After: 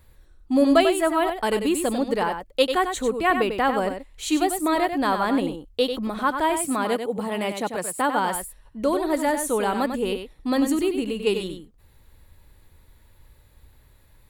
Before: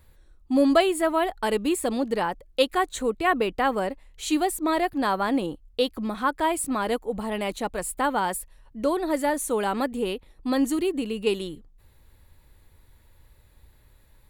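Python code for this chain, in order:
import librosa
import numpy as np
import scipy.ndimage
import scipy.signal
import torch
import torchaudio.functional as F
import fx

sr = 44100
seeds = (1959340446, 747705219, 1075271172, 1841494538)

p1 = fx.highpass(x, sr, hz=87.0, slope=24, at=(6.59, 8.35))
p2 = p1 + fx.echo_single(p1, sr, ms=95, db=-7.5, dry=0)
y = F.gain(torch.from_numpy(p2), 1.5).numpy()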